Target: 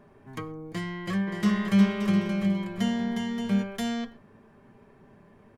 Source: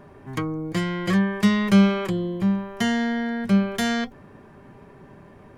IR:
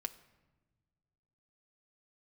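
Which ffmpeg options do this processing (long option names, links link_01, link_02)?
-filter_complex "[0:a]asplit=3[link_01][link_02][link_03];[link_01]afade=type=out:start_time=1.26:duration=0.02[link_04];[link_02]aecho=1:1:360|576|705.6|783.4|830:0.631|0.398|0.251|0.158|0.1,afade=type=in:start_time=1.26:duration=0.02,afade=type=out:start_time=3.62:duration=0.02[link_05];[link_03]afade=type=in:start_time=3.62:duration=0.02[link_06];[link_04][link_05][link_06]amix=inputs=3:normalize=0[link_07];[1:a]atrim=start_sample=2205,atrim=end_sample=6174[link_08];[link_07][link_08]afir=irnorm=-1:irlink=0,volume=-6.5dB"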